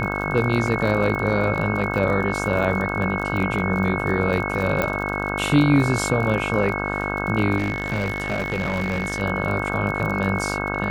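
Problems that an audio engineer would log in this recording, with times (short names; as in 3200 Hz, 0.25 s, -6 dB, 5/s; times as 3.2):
buzz 50 Hz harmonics 32 -27 dBFS
crackle 41/s -27 dBFS
tone 2200 Hz -28 dBFS
0.67 gap 3.3 ms
4.82 pop -9 dBFS
7.57–9.22 clipped -19 dBFS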